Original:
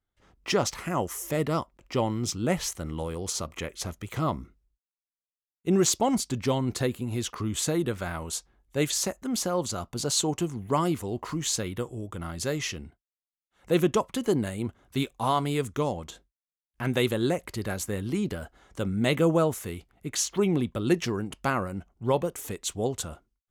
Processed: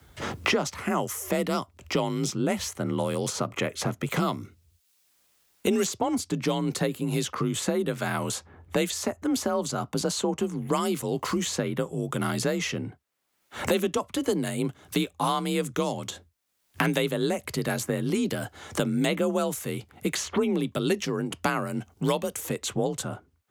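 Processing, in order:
frequency shifter +37 Hz
multiband upward and downward compressor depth 100%

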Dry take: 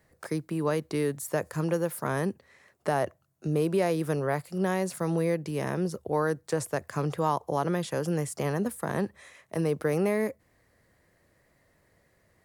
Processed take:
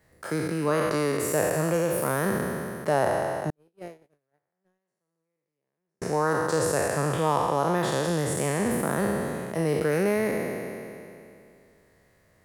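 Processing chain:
peak hold with a decay on every bin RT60 2.58 s
0:03.50–0:06.02: noise gate −17 dBFS, range −57 dB

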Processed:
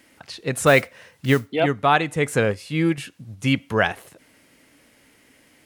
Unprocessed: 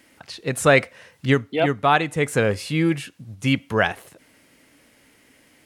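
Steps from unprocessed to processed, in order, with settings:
0:00.66–0:01.51: noise that follows the level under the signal 24 dB
0:02.45–0:02.98: expander for the loud parts 1.5 to 1, over −32 dBFS

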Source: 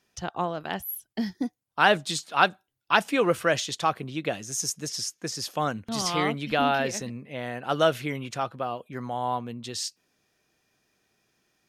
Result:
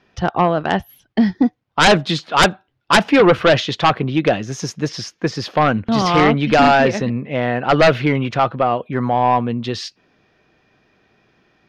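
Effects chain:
high-frequency loss of the air 280 metres
sine wavefolder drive 12 dB, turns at −6.5 dBFS

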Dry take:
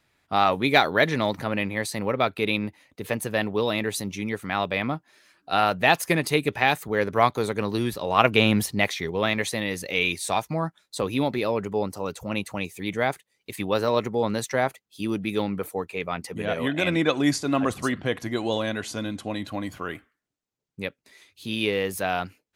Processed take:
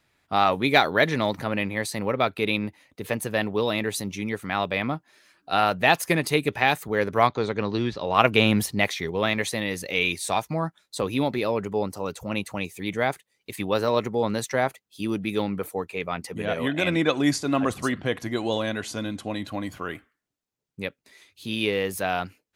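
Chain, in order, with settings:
0:07.27–0:08.14: low-pass filter 5,600 Hz 24 dB per octave

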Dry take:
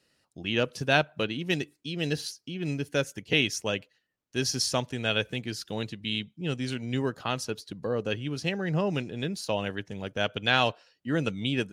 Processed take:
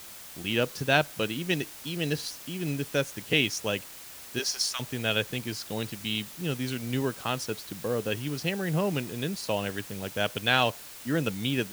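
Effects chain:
0:04.38–0:04.79: high-pass filter 360 Hz → 1,300 Hz 24 dB per octave
background noise white −45 dBFS

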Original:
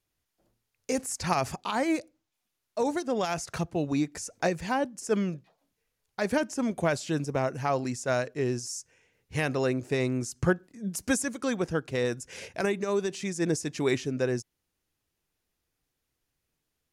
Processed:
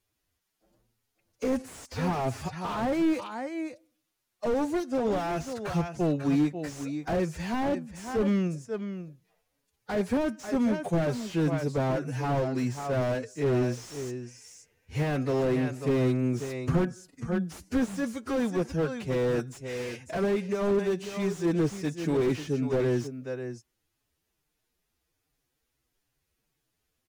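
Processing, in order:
de-essing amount 40%
slap from a distant wall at 58 metres, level −10 dB
phase-vocoder stretch with locked phases 1.6×
slew-rate limiting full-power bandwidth 23 Hz
level +2.5 dB

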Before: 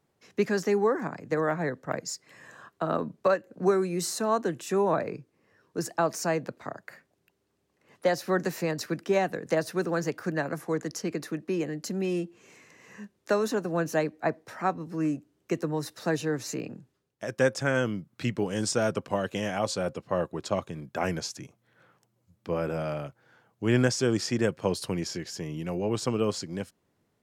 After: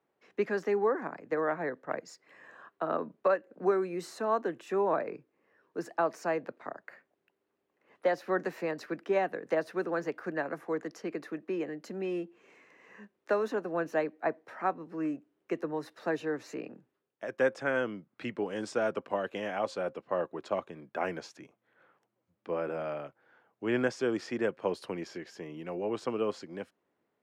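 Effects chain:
three-way crossover with the lows and the highs turned down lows −17 dB, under 240 Hz, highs −16 dB, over 3,100 Hz
level −2.5 dB

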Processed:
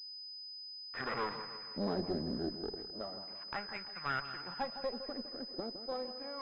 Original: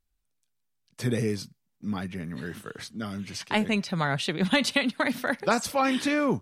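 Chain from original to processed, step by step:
source passing by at 0:01.52, 17 m/s, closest 3.7 metres
dynamic equaliser 990 Hz, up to +3 dB, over −50 dBFS, Q 0.99
leveller curve on the samples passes 3
LFO wah 0.32 Hz 320–1,600 Hz, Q 3.4
tube saturation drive 37 dB, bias 0.7
echo with a time of its own for lows and highs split 1,300 Hz, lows 161 ms, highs 214 ms, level −10.5 dB
switching amplifier with a slow clock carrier 5,000 Hz
level +10.5 dB

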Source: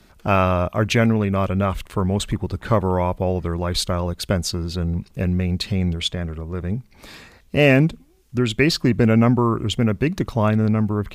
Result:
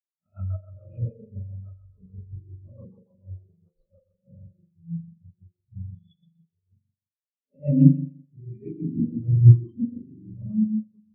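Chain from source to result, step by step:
peak hold with a rise ahead of every peak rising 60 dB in 0.70 s
0:00.96–0:01.50: low-pass filter 1,000 Hz 24 dB per octave
spring reverb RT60 2.3 s, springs 42 ms, chirp 25 ms, DRR −7.5 dB
rotating-speaker cabinet horn 7 Hz
dead-zone distortion −34 dBFS
every bin expanded away from the loudest bin 4 to 1
level −7 dB

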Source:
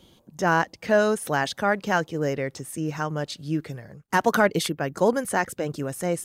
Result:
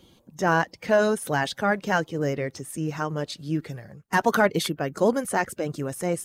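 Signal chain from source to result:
spectral magnitudes quantised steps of 15 dB

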